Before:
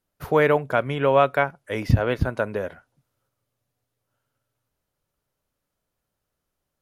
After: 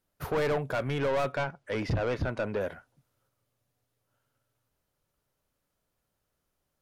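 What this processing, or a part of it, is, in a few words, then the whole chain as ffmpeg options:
saturation between pre-emphasis and de-emphasis: -filter_complex "[0:a]highshelf=f=2.3k:g=9.5,asoftclip=type=tanh:threshold=-24dB,highshelf=f=2.3k:g=-9.5,asettb=1/sr,asplit=3[a][b][c];[a]atrim=end=1.324[d];[b]atrim=start=1.32:end=2.61,asetpts=PTS-STARTPTS,afade=t=in:d=0.004:c=qsin,afade=t=out:st=1.286:d=0.004:c=qsin,lowpass=6.1k[e];[c]atrim=start=2.606[f];[d][e]acrossfade=d=0.004:c1=hsin:c2=qsin[g];[g][f]acrossfade=d=0.004:c1=qsin:c2=hsin"

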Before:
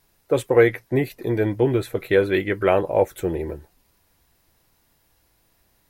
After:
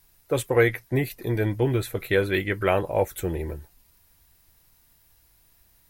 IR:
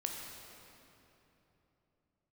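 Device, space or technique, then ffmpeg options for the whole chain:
smiley-face EQ: -af "lowshelf=f=89:g=5.5,equalizer=f=410:t=o:w=2.4:g=-5.5,highshelf=f=8.6k:g=7.5"

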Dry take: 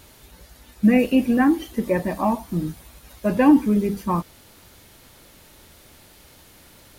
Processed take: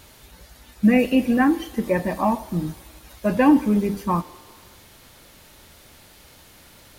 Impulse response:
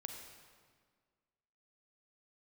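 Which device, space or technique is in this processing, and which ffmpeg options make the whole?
filtered reverb send: -filter_complex "[0:a]asplit=2[a][b];[b]highpass=f=310:w=0.5412,highpass=f=310:w=1.3066,lowpass=8.8k[c];[1:a]atrim=start_sample=2205[d];[c][d]afir=irnorm=-1:irlink=0,volume=-9.5dB[e];[a][e]amix=inputs=2:normalize=0"

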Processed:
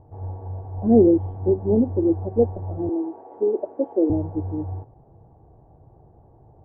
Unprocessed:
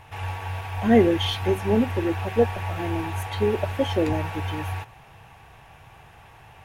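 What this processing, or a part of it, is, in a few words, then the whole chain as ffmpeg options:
under water: -filter_complex "[0:a]lowpass=f=650:w=0.5412,lowpass=f=650:w=1.3066,equalizer=f=320:t=o:w=0.59:g=7,asettb=1/sr,asplit=3[a][b][c];[a]atrim=end=2.894[d];[b]atrim=start=2.89:end=4.1,asetpts=PTS-STARTPTS,afade=t=in:d=0.004:c=qsin,afade=t=out:st=1.206:d=0.004:c=qsin,highpass=f=290:w=0.5412,highpass=f=290:w=1.3066[e];[c]atrim=start=4.096[f];[d][e]acrossfade=d=0.004:c1=hsin:c2=qsin[g];[g][f]acrossfade=d=0.004:c1=qsin:c2=hsin"

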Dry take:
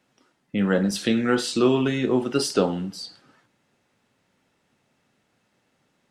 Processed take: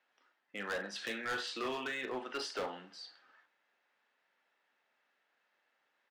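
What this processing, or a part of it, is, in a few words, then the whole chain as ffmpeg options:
megaphone: -filter_complex "[0:a]highpass=690,lowpass=3.7k,equalizer=f=1.7k:t=o:w=0.36:g=5.5,asoftclip=type=hard:threshold=-25.5dB,asplit=2[a][b];[b]adelay=39,volume=-12.5dB[c];[a][c]amix=inputs=2:normalize=0,volume=-7dB"

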